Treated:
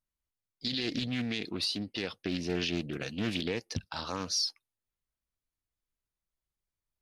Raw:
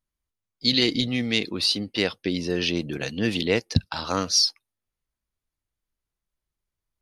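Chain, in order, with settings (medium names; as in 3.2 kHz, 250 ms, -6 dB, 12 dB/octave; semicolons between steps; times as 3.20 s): rattle on loud lows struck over -25 dBFS, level -25 dBFS; peak limiter -15.5 dBFS, peak gain reduction 9.5 dB; loudspeaker Doppler distortion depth 0.43 ms; trim -6 dB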